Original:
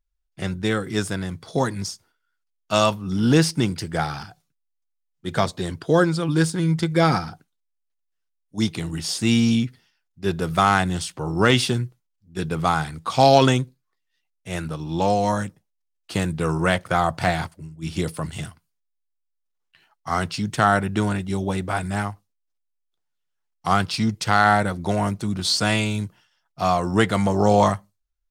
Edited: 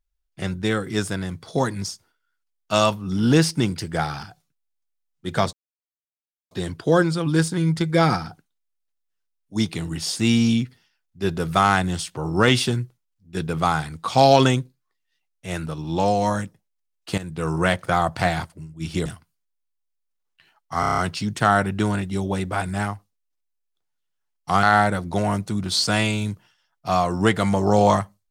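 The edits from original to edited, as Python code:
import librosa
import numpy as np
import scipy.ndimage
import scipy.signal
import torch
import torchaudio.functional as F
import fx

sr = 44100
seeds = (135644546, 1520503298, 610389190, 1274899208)

y = fx.edit(x, sr, fx.insert_silence(at_s=5.53, length_s=0.98),
    fx.fade_in_from(start_s=16.2, length_s=0.38, floor_db=-13.5),
    fx.cut(start_s=18.08, length_s=0.33),
    fx.stutter(start_s=20.15, slice_s=0.03, count=7),
    fx.cut(start_s=23.8, length_s=0.56), tone=tone)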